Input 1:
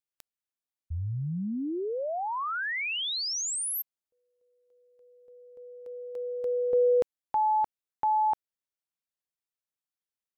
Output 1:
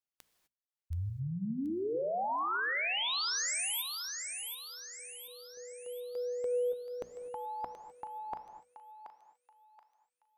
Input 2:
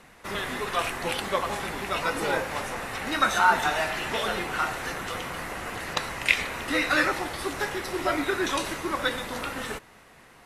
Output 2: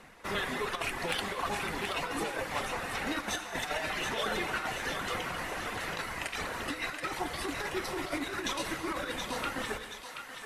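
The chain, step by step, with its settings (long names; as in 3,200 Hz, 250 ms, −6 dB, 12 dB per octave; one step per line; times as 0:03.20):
reverb reduction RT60 0.78 s
high-shelf EQ 6,500 Hz −4 dB
mains-hum notches 60/120/180/240 Hz
compressor whose output falls as the input rises −30 dBFS, ratio −0.5
hard clipping −15 dBFS
on a send: feedback echo with a high-pass in the loop 728 ms, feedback 47%, high-pass 1,100 Hz, level −6 dB
on the sum: reverb whose tail is shaped and stops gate 280 ms flat, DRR 9.5 dB
level −3.5 dB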